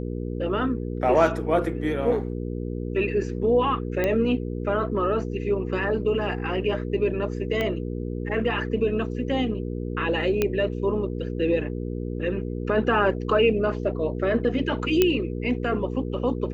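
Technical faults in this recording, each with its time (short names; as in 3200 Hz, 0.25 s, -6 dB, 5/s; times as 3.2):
hum 60 Hz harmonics 8 -30 dBFS
4.04 pop -12 dBFS
7.61 pop -14 dBFS
10.42 pop -9 dBFS
15.02 pop -5 dBFS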